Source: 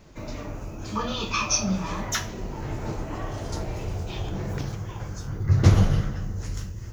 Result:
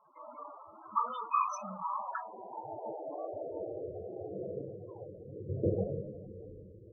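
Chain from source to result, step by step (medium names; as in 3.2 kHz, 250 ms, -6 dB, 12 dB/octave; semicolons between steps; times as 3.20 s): de-hum 306.9 Hz, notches 5; band-pass sweep 1.1 kHz -> 490 Hz, 1.73–3.68 s; loudest bins only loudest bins 16; trim +2 dB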